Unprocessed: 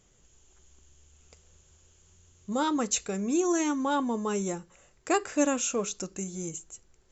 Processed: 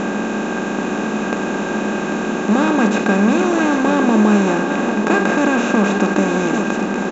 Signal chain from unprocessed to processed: spectral levelling over time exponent 0.2; low-pass 3.2 kHz 12 dB/octave; small resonant body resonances 210/1600/2500 Hz, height 15 dB, ringing for 85 ms; on a send: delay 794 ms -8 dB; on the sum: trim +2 dB

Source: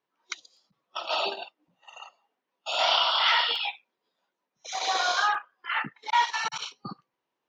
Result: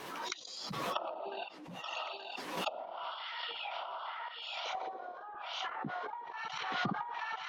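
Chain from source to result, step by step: on a send: thinning echo 876 ms, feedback 61%, high-pass 550 Hz, level -14 dB; on the sum: compression 10:1, threshold -35 dBFS, peak gain reduction 17 dB; random-step tremolo, depth 75%; low-pass that closes with the level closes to 430 Hz, closed at -36 dBFS; swell ahead of each attack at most 31 dB/s; trim +7 dB

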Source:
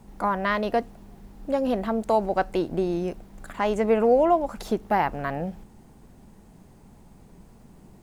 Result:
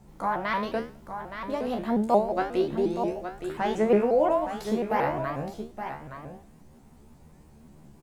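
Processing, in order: feedback comb 74 Hz, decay 0.41 s, harmonics all, mix 90%; on a send: delay 869 ms -9 dB; on the sum: vibrato with a chosen wave saw up 5.6 Hz, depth 160 cents; trim +6 dB

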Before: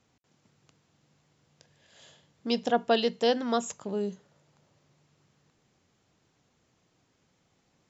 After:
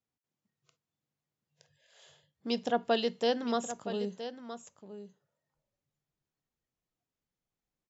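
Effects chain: spectral noise reduction 19 dB; delay 969 ms -11.5 dB; trim -4 dB

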